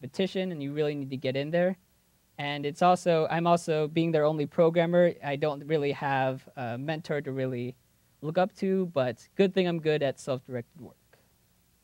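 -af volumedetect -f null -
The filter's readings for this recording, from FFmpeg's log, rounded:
mean_volume: -28.5 dB
max_volume: -10.2 dB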